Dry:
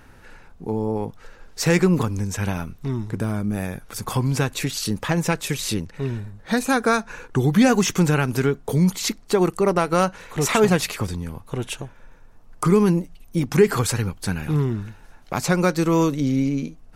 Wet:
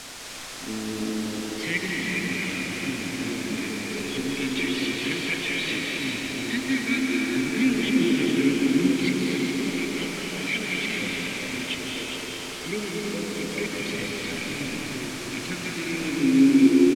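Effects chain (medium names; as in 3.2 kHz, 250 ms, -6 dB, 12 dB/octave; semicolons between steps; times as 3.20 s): gain riding within 4 dB 0.5 s; vowel filter i; hum notches 50/100/150/200/250/300/350 Hz; frequency-shifting echo 413 ms, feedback 33%, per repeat +85 Hz, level -7 dB; phaser 0.12 Hz, delay 2.4 ms, feedback 44%; high-order bell 2.8 kHz +9.5 dB; word length cut 6-bit, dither triangular; low-pass 7.4 kHz 12 dB/octave; reverberation RT60 5.1 s, pre-delay 120 ms, DRR -2.5 dB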